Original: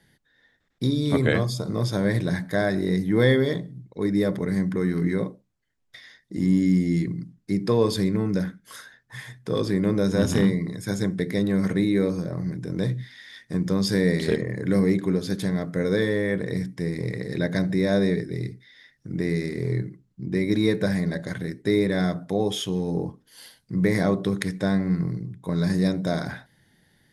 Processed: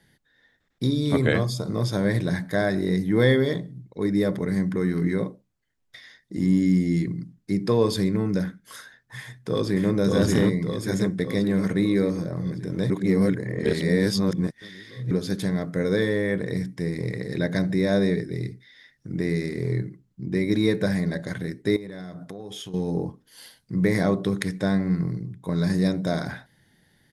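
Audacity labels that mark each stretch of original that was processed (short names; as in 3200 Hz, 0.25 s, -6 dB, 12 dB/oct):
9.180000	9.910000	echo throw 0.58 s, feedback 60%, level -1.5 dB
12.900000	15.110000	reverse
21.760000	22.740000	compressor 10:1, threshold -33 dBFS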